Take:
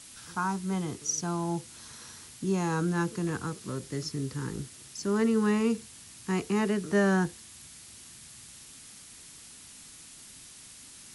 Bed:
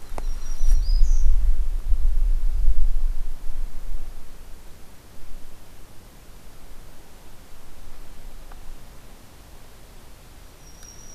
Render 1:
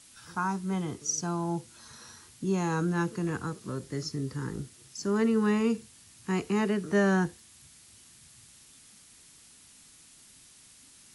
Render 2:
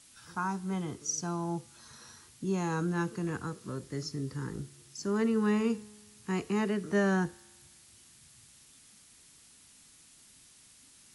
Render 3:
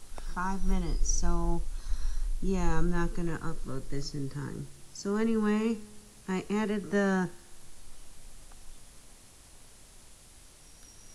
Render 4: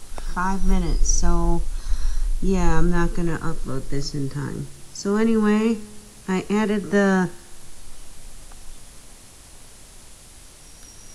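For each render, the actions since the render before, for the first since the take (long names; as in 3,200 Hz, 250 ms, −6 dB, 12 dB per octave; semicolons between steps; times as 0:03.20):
noise reduction from a noise print 6 dB
tuned comb filter 70 Hz, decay 1.5 s, harmonics all, mix 30%
mix in bed −11.5 dB
level +9 dB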